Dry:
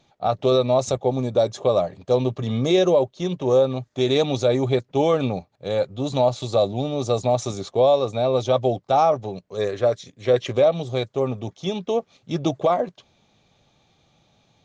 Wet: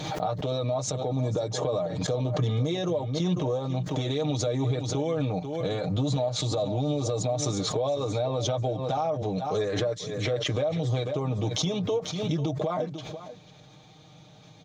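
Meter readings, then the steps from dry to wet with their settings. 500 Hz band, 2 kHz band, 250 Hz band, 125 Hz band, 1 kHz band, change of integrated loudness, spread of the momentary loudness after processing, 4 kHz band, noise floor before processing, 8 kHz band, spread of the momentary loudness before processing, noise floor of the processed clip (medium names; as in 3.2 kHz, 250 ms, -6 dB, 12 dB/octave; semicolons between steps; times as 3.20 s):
-9.0 dB, -4.5 dB, -4.5 dB, 0.0 dB, -8.5 dB, -6.5 dB, 3 LU, -2.5 dB, -64 dBFS, no reading, 8 LU, -52 dBFS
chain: compression 16:1, threshold -30 dBFS, peak gain reduction 18 dB; peaking EQ 2.6 kHz -4 dB 0.22 oct; comb 6.5 ms, depth 79%; delay 493 ms -15.5 dB; peak limiter -25 dBFS, peak gain reduction 10 dB; high-pass 81 Hz; bass shelf 120 Hz +7.5 dB; swell ahead of each attack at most 37 dB/s; trim +5 dB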